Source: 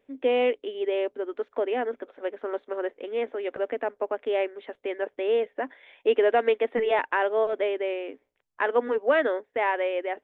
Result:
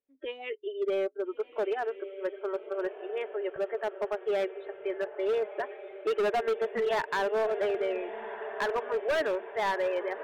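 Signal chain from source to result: spectral noise reduction 24 dB; diffused feedback echo 1.348 s, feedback 52%, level -12.5 dB; overloaded stage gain 22.5 dB; gain -1.5 dB

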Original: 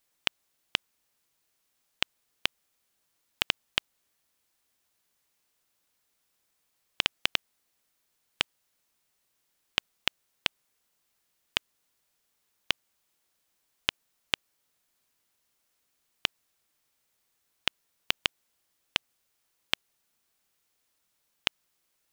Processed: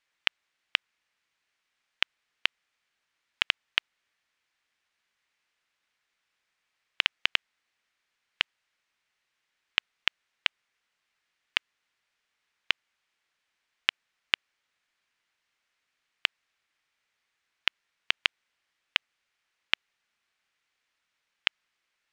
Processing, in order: LPF 6900 Hz 12 dB/oct; bell 2000 Hz +13.5 dB 2.1 oct; gain -8 dB

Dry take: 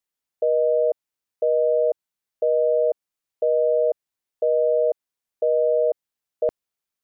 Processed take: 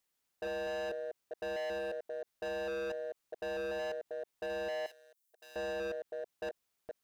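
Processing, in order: reverse delay 0.223 s, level -11 dB; hard clip -28 dBFS, distortion -5 dB; limiter -40 dBFS, peak gain reduction 12 dB; 4.86–5.56 differentiator; gain +4 dB

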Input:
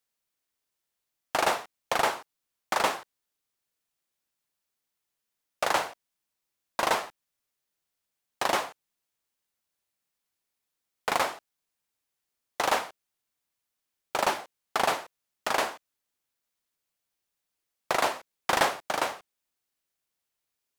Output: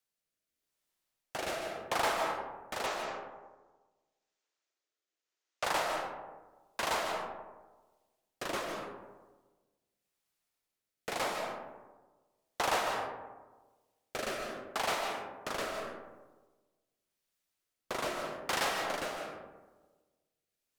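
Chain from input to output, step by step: 2.86–5.64 elliptic band-pass 320–6900 Hz; soft clip -25 dBFS, distortion -8 dB; rotary speaker horn 0.85 Hz; reverb RT60 1.3 s, pre-delay 0.11 s, DRR 2.5 dB

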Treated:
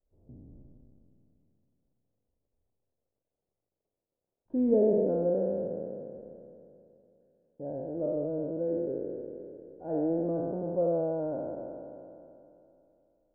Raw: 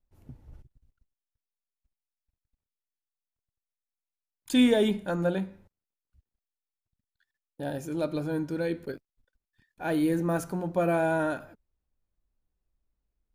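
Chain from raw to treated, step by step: spectral trails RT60 2.86 s; crackle 410/s -57 dBFS; ladder low-pass 640 Hz, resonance 45%

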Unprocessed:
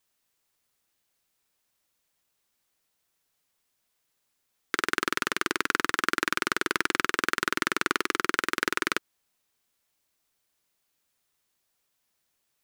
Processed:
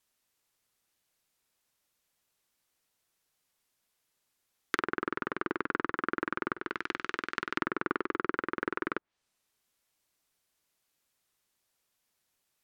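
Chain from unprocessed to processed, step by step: 6.56–7.54 negative-ratio compressor -31 dBFS, ratio -0.5; treble ducked by the level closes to 1200 Hz, closed at -27 dBFS; gain -1.5 dB

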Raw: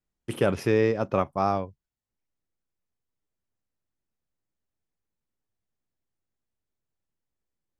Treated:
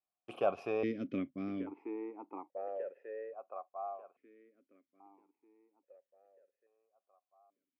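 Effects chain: 1.18–1.58 air absorption 170 m; on a send: band-limited delay 1.191 s, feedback 35%, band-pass 790 Hz, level -6 dB; on the sum: dynamic EQ 2300 Hz, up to -4 dB, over -43 dBFS, Q 1.4; vowel sequencer 1.2 Hz; gain +4.5 dB

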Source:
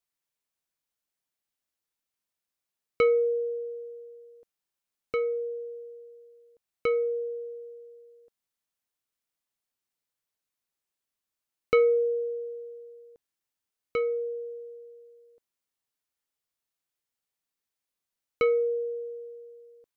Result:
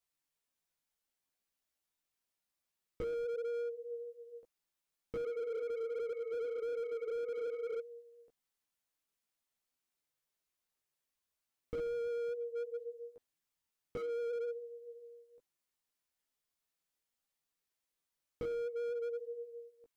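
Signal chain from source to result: chorus voices 6, 0.65 Hz, delay 16 ms, depth 4.1 ms; in parallel at -7 dB: soft clip -28 dBFS, distortion -11 dB; on the sum: spectral freeze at 5.29, 2.51 s; slew limiter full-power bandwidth 8.4 Hz; gain -1 dB

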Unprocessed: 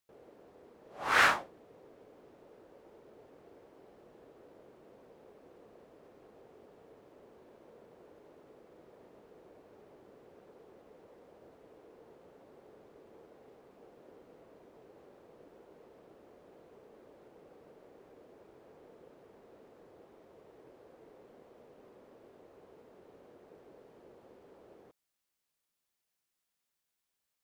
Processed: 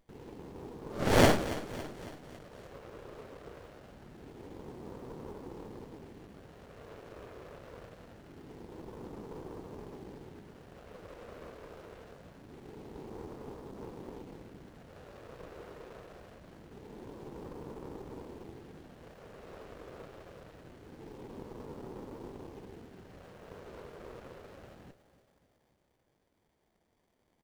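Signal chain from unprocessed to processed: phaser stages 2, 0.24 Hz, lowest notch 210–1500 Hz; feedback echo 0.278 s, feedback 54%, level -15 dB; running maximum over 33 samples; gain +16.5 dB

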